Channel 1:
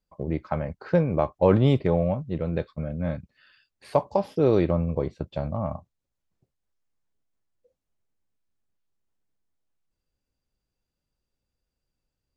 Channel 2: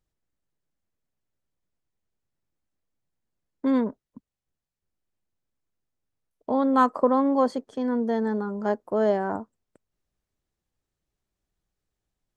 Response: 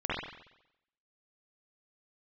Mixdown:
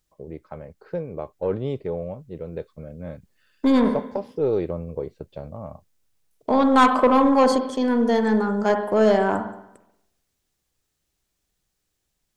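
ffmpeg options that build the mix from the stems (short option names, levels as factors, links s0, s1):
-filter_complex "[0:a]equalizer=f=440:t=o:w=0.57:g=9.5,volume=0.266[s0];[1:a]highshelf=f=2200:g=11,volume=1.19,asplit=2[s1][s2];[s2]volume=0.2[s3];[2:a]atrim=start_sample=2205[s4];[s3][s4]afir=irnorm=-1:irlink=0[s5];[s0][s1][s5]amix=inputs=3:normalize=0,dynaudnorm=f=290:g=21:m=3.76,aeval=exprs='(tanh(2.82*val(0)+0.2)-tanh(0.2))/2.82':c=same"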